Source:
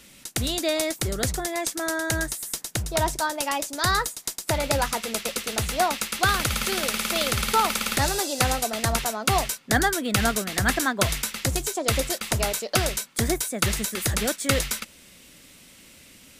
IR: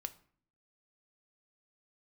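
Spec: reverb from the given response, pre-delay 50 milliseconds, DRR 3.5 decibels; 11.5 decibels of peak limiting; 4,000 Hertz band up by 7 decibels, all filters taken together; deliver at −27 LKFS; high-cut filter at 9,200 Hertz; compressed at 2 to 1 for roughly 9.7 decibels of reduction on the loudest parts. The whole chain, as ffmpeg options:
-filter_complex "[0:a]lowpass=9200,equalizer=frequency=4000:width_type=o:gain=8.5,acompressor=threshold=-34dB:ratio=2,alimiter=limit=-23.5dB:level=0:latency=1,asplit=2[link_01][link_02];[1:a]atrim=start_sample=2205,adelay=50[link_03];[link_02][link_03]afir=irnorm=-1:irlink=0,volume=-1dB[link_04];[link_01][link_04]amix=inputs=2:normalize=0,volume=5.5dB"

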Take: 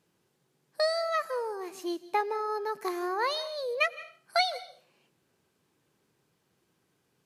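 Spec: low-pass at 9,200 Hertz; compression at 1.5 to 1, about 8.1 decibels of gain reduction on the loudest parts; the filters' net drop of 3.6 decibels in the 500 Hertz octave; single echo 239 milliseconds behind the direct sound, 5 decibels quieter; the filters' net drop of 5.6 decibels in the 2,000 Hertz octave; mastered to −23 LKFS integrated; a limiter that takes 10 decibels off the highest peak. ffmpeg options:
ffmpeg -i in.wav -af "lowpass=9200,equalizer=frequency=500:width_type=o:gain=-4.5,equalizer=frequency=2000:width_type=o:gain=-6.5,acompressor=threshold=-48dB:ratio=1.5,alimiter=level_in=8.5dB:limit=-24dB:level=0:latency=1,volume=-8.5dB,aecho=1:1:239:0.562,volume=18.5dB" out.wav

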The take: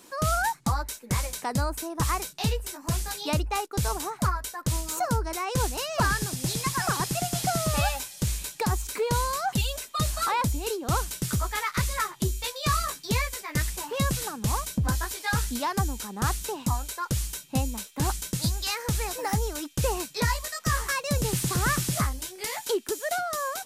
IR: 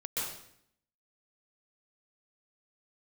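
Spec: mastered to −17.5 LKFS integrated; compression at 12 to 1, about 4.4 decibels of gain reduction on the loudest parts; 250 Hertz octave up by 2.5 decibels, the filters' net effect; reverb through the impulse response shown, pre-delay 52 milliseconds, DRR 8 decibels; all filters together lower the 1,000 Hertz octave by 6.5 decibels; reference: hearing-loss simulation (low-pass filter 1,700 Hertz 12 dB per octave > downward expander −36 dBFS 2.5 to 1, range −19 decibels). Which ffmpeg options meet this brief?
-filter_complex "[0:a]equalizer=frequency=250:width_type=o:gain=4,equalizer=frequency=1000:width_type=o:gain=-8,acompressor=threshold=-25dB:ratio=12,asplit=2[link_01][link_02];[1:a]atrim=start_sample=2205,adelay=52[link_03];[link_02][link_03]afir=irnorm=-1:irlink=0,volume=-12dB[link_04];[link_01][link_04]amix=inputs=2:normalize=0,lowpass=1700,agate=range=-19dB:threshold=-36dB:ratio=2.5,volume=15.5dB"

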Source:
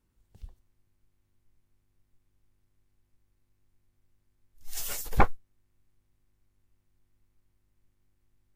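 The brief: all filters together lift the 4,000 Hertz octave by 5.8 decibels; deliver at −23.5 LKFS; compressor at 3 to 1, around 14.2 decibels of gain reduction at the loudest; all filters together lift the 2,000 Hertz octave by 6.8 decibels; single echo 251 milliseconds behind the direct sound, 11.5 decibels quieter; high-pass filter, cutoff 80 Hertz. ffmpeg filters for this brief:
ffmpeg -i in.wav -af "highpass=80,equalizer=frequency=2000:width_type=o:gain=7.5,equalizer=frequency=4000:width_type=o:gain=5.5,acompressor=threshold=-36dB:ratio=3,aecho=1:1:251:0.266,volume=15.5dB" out.wav

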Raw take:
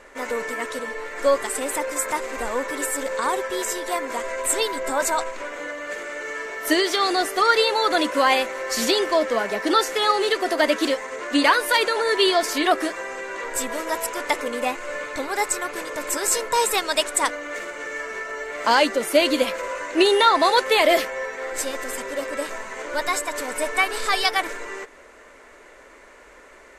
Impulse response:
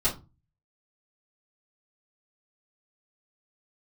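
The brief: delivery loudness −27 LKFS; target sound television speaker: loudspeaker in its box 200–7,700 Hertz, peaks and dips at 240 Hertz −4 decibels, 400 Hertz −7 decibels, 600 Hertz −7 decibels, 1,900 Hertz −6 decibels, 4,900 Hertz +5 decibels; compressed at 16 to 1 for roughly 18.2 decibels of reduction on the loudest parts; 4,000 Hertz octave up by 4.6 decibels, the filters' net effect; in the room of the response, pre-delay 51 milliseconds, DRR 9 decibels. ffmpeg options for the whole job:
-filter_complex "[0:a]equalizer=frequency=4000:width_type=o:gain=4,acompressor=threshold=-30dB:ratio=16,asplit=2[link_01][link_02];[1:a]atrim=start_sample=2205,adelay=51[link_03];[link_02][link_03]afir=irnorm=-1:irlink=0,volume=-18.5dB[link_04];[link_01][link_04]amix=inputs=2:normalize=0,highpass=frequency=200:width=0.5412,highpass=frequency=200:width=1.3066,equalizer=frequency=240:width_type=q:width=4:gain=-4,equalizer=frequency=400:width_type=q:width=4:gain=-7,equalizer=frequency=600:width_type=q:width=4:gain=-7,equalizer=frequency=1900:width_type=q:width=4:gain=-6,equalizer=frequency=4900:width_type=q:width=4:gain=5,lowpass=frequency=7700:width=0.5412,lowpass=frequency=7700:width=1.3066,volume=8dB"

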